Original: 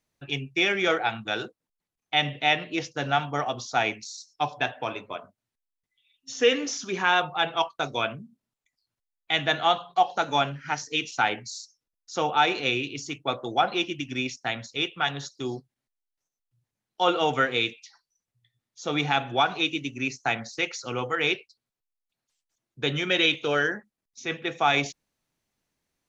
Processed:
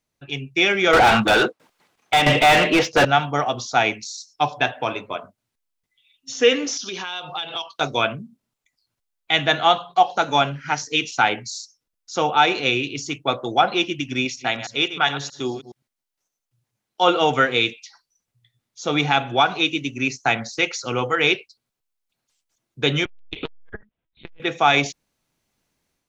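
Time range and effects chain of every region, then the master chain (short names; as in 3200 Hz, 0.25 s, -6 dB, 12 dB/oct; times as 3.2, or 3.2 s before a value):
0.93–3.05 tremolo saw down 1.5 Hz, depth 90% + overdrive pedal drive 36 dB, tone 1800 Hz, clips at -11.5 dBFS
6.77–7.81 HPF 190 Hz 6 dB/oct + band shelf 4100 Hz +11 dB 1.3 oct + compressor 12:1, threshold -31 dBFS
14.25–17.03 reverse delay 0.105 s, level -12 dB + low shelf 120 Hz -9.5 dB
23.05–24.4 LPC vocoder at 8 kHz pitch kept + core saturation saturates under 1100 Hz
whole clip: notch 1800 Hz, Q 26; AGC gain up to 7 dB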